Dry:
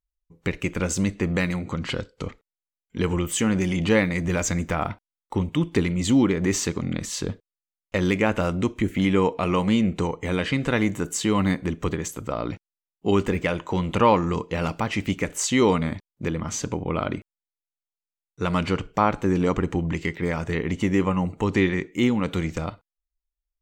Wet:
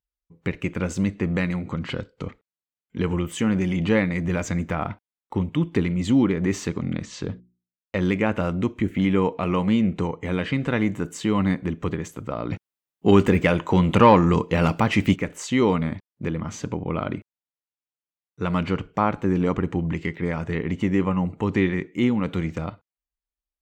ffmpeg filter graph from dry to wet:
-filter_complex "[0:a]asettb=1/sr,asplit=3[a][b][c];[a]atrim=end=7.034[d];[b]atrim=start=7.03:end=7.97,asetpts=PTS-STARTPTS,afade=t=in:d=0.004:c=qsin,afade=t=out:st=0.936:d=0.004:c=qsin,lowpass=f=7.4k:w=0.5412,lowpass=f=7.4k:w=1.3066,agate=range=-33dB:threshold=-47dB:ratio=3:release=100:detection=peak,bandreject=f=60:t=h:w=6,bandreject=f=120:t=h:w=6,bandreject=f=180:t=h:w=6,bandreject=f=240:t=h:w=6,bandreject=f=300:t=h:w=6,bandreject=f=360:t=h:w=6[e];[c]atrim=start=7.966[f];[d][e]acrossfade=d=0.004:c1=hsin:c2=qsin[g];[g][f]acrossfade=d=0.004:c1=qsin:c2=hsin,asettb=1/sr,asplit=3[h][i][j];[h]atrim=end=12.514[k];[i]atrim=start=12.51:end=15.16,asetpts=PTS-STARTPTS,afade=t=in:d=0.004:c=qsin,afade=t=out:st=2.646:d=0.004:c=qsin,highshelf=f=7k:g=9,acontrast=60[l];[j]atrim=start=15.156[m];[k][l]acrossfade=d=0.004:c1=hsin:c2=qsin[n];[n][m]acrossfade=d=0.004:c1=qsin:c2=hsin,highpass=f=140:p=1,bass=f=250:g=6,treble=f=4k:g=-9,volume=-1.5dB"

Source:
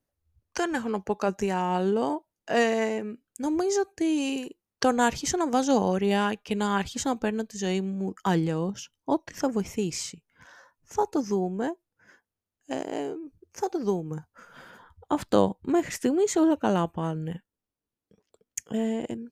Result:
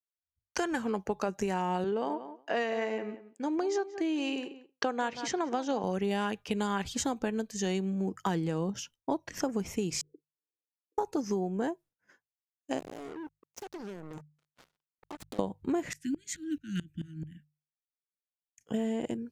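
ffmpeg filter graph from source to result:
-filter_complex "[0:a]asettb=1/sr,asplit=3[a][b][c];[a]atrim=end=1.844[d];[b]atrim=start=1.84:end=5.84,asetpts=PTS-STARTPTS,afade=t=in:d=0.004:c=qsin,afade=t=out:st=3.996:d=0.004:c=qsin,highpass=160,lowpass=4k,lowshelf=f=260:g=-7.5,asplit=2[e][f];[f]adelay=181,lowpass=f=2.5k:p=1,volume=-14.5dB,asplit=2[g][h];[h]adelay=181,lowpass=f=2.5k:p=1,volume=0.15[i];[e][g][i]amix=inputs=3:normalize=0,atrim=end_sample=176400[j];[c]atrim=start=5.836[k];[d][j]acrossfade=d=0.004:c1=hsin:c2=qsin[l];[l][k]acrossfade=d=0.004:c1=qsin:c2=hsin,asettb=1/sr,asplit=3[m][n][o];[m]atrim=end=10.014[p];[n]atrim=start=10.01:end=10.98,asetpts=PTS-STARTPTS,afade=t=in:d=0.004:c=qsin,afade=t=out:st=0.966:d=0.004:c=qsin,aeval=exprs='val(0)*sin(2*PI*29*n/s)':c=same,asuperpass=centerf=370:order=12:qfactor=2[q];[o]atrim=start=10.976[r];[p][q]acrossfade=d=0.004:c1=hsin:c2=qsin[s];[s][r]acrossfade=d=0.004:c1=qsin:c2=hsin,asettb=1/sr,asplit=3[t][u][v];[t]atrim=end=12.794[w];[u]atrim=start=12.79:end=15.39,asetpts=PTS-STARTPTS,afade=t=in:d=0.004:c=qsin,afade=t=out:st=2.596:d=0.004:c=qsin,acompressor=threshold=-39dB:ratio=12:attack=3.2:release=140:knee=1:detection=peak,equalizer=f=1.7k:t=o:w=0.25:g=-14.5,acrusher=bits=6:mix=0:aa=0.5[x];[v]atrim=start=15.386[y];[w][x]acrossfade=d=0.004:c1=hsin:c2=qsin[z];[z][y]acrossfade=d=0.004:c1=qsin:c2=hsin,asettb=1/sr,asplit=3[aa][ab][ac];[aa]atrim=end=15.934[ad];[ab]atrim=start=15.93:end=18.61,asetpts=PTS-STARTPTS,afade=t=in:d=0.004:c=qsin,afade=t=out:st=2.676:d=0.004:c=qsin,asuperstop=centerf=690:order=20:qfactor=0.59,aeval=exprs='val(0)*pow(10,-26*if(lt(mod(-4.6*n/s,1),2*abs(-4.6)/1000),1-mod(-4.6*n/s,1)/(2*abs(-4.6)/1000),(mod(-4.6*n/s,1)-2*abs(-4.6)/1000)/(1-2*abs(-4.6)/1000))/20)':c=same[ae];[ac]atrim=start=18.606[af];[ad][ae]acrossfade=d=0.004:c1=hsin:c2=qsin[ag];[ag][af]acrossfade=d=0.004:c1=qsin:c2=hsin,agate=range=-33dB:threshold=-49dB:ratio=3:detection=peak,acompressor=threshold=-27dB:ratio=6,bandreject=f=50:t=h:w=6,bandreject=f=100:t=h:w=6,bandreject=f=150:t=h:w=6"

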